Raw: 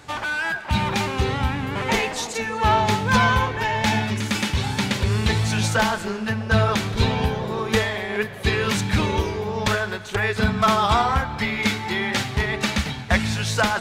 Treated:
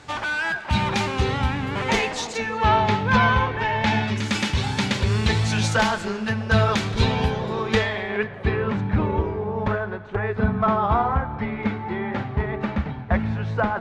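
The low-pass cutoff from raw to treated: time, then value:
2.02 s 8.1 kHz
2.92 s 3.3 kHz
3.79 s 3.3 kHz
4.36 s 7.7 kHz
7.29 s 7.7 kHz
8.10 s 3.2 kHz
8.66 s 1.2 kHz

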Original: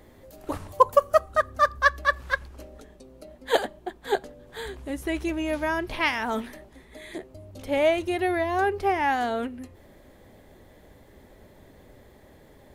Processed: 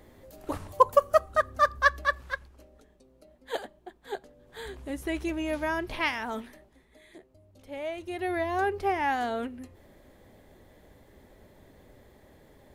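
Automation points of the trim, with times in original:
1.98 s -2 dB
2.57 s -11 dB
4.25 s -11 dB
4.74 s -3 dB
5.97 s -3 dB
7.12 s -14 dB
7.86 s -14 dB
8.38 s -3.5 dB

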